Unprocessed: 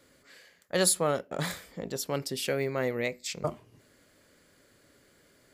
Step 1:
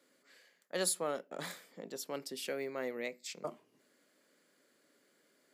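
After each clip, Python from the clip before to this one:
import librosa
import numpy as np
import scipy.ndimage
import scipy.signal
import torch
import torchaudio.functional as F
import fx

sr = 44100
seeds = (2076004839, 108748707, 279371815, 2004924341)

y = scipy.signal.sosfilt(scipy.signal.butter(4, 200.0, 'highpass', fs=sr, output='sos'), x)
y = F.gain(torch.from_numpy(y), -8.5).numpy()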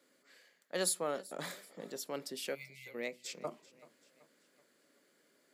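y = fx.spec_erase(x, sr, start_s=2.55, length_s=0.39, low_hz=200.0, high_hz=2000.0)
y = fx.echo_warbled(y, sr, ms=383, feedback_pct=48, rate_hz=2.8, cents=60, wet_db=-20)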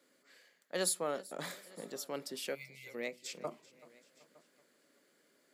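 y = x + 10.0 ** (-24.0 / 20.0) * np.pad(x, (int(911 * sr / 1000.0), 0))[:len(x)]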